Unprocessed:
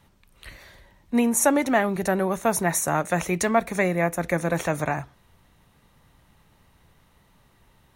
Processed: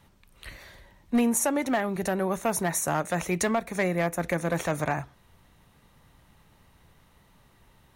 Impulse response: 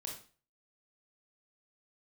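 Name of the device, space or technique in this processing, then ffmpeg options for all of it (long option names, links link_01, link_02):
limiter into clipper: -af "alimiter=limit=-14dB:level=0:latency=1:release=489,asoftclip=type=hard:threshold=-17.5dB"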